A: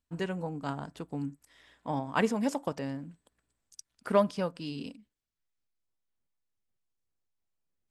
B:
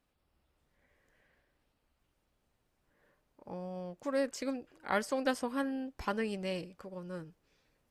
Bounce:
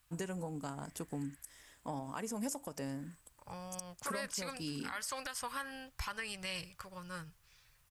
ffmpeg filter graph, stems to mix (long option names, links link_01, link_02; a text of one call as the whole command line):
ffmpeg -i stem1.wav -i stem2.wav -filter_complex "[0:a]acompressor=threshold=-34dB:ratio=4,aexciter=amount=4.4:drive=7.5:freq=5600,asoftclip=type=hard:threshold=-21.5dB,volume=-8.5dB[link_01];[1:a]firequalizer=gain_entry='entry(120,0);entry(230,-23);entry(1100,-1);entry(9300,6)':delay=0.05:min_phase=1,alimiter=level_in=1dB:limit=-24dB:level=0:latency=1:release=361,volume=-1dB,volume=1dB[link_02];[link_01][link_02]amix=inputs=2:normalize=0,acontrast=65,alimiter=level_in=4.5dB:limit=-24dB:level=0:latency=1:release=137,volume=-4.5dB" out.wav